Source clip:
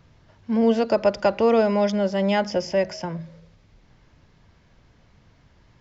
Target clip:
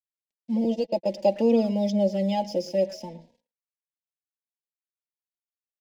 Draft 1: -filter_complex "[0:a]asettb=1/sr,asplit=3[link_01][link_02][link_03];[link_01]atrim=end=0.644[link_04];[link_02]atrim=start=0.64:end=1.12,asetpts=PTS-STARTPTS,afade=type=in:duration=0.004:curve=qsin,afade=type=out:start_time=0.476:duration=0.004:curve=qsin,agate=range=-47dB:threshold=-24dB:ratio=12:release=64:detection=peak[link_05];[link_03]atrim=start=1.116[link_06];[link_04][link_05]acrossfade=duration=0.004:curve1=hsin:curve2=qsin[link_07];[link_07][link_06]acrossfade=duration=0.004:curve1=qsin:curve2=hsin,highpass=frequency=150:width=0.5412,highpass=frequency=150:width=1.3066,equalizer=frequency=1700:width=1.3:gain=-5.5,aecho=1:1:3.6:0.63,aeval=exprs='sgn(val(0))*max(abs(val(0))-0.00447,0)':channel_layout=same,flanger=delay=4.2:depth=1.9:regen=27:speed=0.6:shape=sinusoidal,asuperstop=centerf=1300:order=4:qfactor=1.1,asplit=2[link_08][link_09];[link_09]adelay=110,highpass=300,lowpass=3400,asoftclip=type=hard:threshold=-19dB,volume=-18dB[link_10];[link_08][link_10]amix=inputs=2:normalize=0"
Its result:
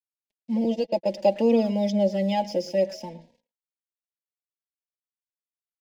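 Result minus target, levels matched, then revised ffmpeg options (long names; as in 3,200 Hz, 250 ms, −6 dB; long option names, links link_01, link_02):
2,000 Hz band +4.0 dB
-filter_complex "[0:a]asettb=1/sr,asplit=3[link_01][link_02][link_03];[link_01]atrim=end=0.644[link_04];[link_02]atrim=start=0.64:end=1.12,asetpts=PTS-STARTPTS,afade=type=in:duration=0.004:curve=qsin,afade=type=out:start_time=0.476:duration=0.004:curve=qsin,agate=range=-47dB:threshold=-24dB:ratio=12:release=64:detection=peak[link_05];[link_03]atrim=start=1.116[link_06];[link_04][link_05]acrossfade=duration=0.004:curve1=hsin:curve2=qsin[link_07];[link_07][link_06]acrossfade=duration=0.004:curve1=qsin:curve2=hsin,highpass=frequency=150:width=0.5412,highpass=frequency=150:width=1.3066,equalizer=frequency=1700:width=1.3:gain=-13.5,aecho=1:1:3.6:0.63,aeval=exprs='sgn(val(0))*max(abs(val(0))-0.00447,0)':channel_layout=same,flanger=delay=4.2:depth=1.9:regen=27:speed=0.6:shape=sinusoidal,asuperstop=centerf=1300:order=4:qfactor=1.1,asplit=2[link_08][link_09];[link_09]adelay=110,highpass=300,lowpass=3400,asoftclip=type=hard:threshold=-19dB,volume=-18dB[link_10];[link_08][link_10]amix=inputs=2:normalize=0"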